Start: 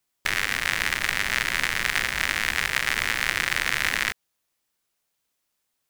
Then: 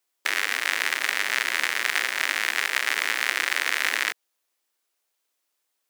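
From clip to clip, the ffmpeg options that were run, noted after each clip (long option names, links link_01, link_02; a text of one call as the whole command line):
ffmpeg -i in.wav -af "highpass=frequency=300:width=0.5412,highpass=frequency=300:width=1.3066" out.wav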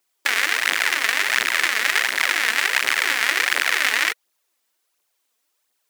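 ffmpeg -i in.wav -af "aphaser=in_gain=1:out_gain=1:delay=4.7:decay=0.55:speed=1.4:type=triangular,volume=3.5dB" out.wav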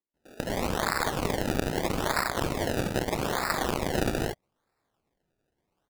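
ffmpeg -i in.wav -filter_complex "[0:a]acrossover=split=510|2600[link_01][link_02][link_03];[link_03]adelay=140[link_04];[link_02]adelay=210[link_05];[link_01][link_05][link_04]amix=inputs=3:normalize=0,acrusher=samples=28:mix=1:aa=0.000001:lfo=1:lforange=28:lforate=0.79,volume=-6dB" out.wav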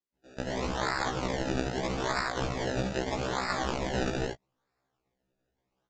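ffmpeg -i in.wav -af "aresample=16000,aresample=44100,afftfilt=real='re*1.73*eq(mod(b,3),0)':imag='im*1.73*eq(mod(b,3),0)':win_size=2048:overlap=0.75" out.wav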